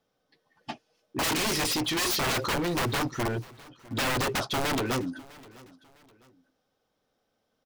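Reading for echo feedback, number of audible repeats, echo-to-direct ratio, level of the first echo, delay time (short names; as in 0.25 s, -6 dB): 35%, 2, -21.5 dB, -22.0 dB, 0.654 s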